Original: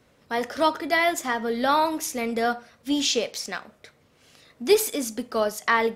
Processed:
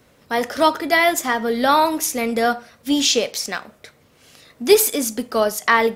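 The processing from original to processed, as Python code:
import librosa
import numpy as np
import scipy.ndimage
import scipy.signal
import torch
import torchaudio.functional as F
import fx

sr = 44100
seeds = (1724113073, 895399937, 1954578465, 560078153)

y = fx.high_shelf(x, sr, hz=11000.0, db=8.5)
y = y * 10.0 ** (5.5 / 20.0)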